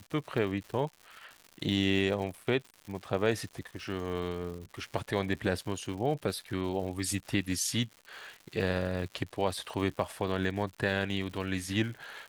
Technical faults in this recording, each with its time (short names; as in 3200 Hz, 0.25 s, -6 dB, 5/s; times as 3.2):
crackle 180/s -40 dBFS